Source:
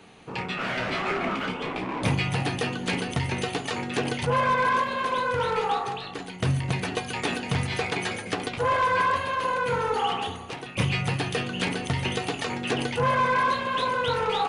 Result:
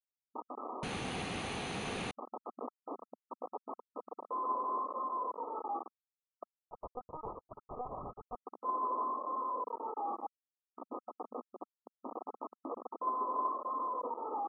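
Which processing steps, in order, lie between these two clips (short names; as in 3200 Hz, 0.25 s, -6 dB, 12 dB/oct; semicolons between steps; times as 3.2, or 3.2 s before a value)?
sample sorter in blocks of 8 samples; spectral gate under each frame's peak -25 dB strong; differentiator; 11.5–12.06 compressor 8:1, threshold -34 dBFS, peak gain reduction 8.5 dB; flange 0.85 Hz, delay 5.4 ms, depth 1.7 ms, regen +33%; bit-crush 5-bit; brick-wall FIR band-pass 220–1300 Hz; 0.83–2.11 room tone; 6.67–8.35 LPC vocoder at 8 kHz pitch kept; gain +13 dB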